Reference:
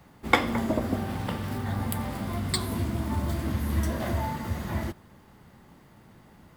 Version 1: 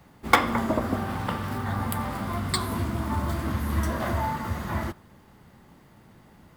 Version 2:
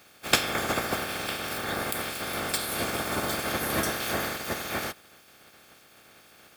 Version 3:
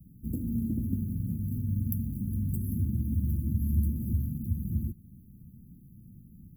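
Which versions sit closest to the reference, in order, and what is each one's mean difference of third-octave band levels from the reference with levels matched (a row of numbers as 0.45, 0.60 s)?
1, 2, 3; 1.5, 8.5, 17.5 dB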